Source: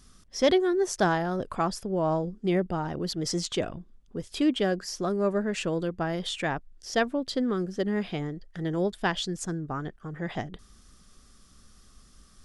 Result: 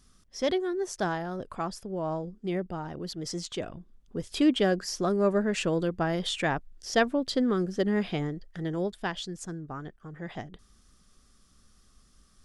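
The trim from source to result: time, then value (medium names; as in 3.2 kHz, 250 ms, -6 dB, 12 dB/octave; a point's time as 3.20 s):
3.60 s -5.5 dB
4.25 s +1.5 dB
8.26 s +1.5 dB
9.11 s -5.5 dB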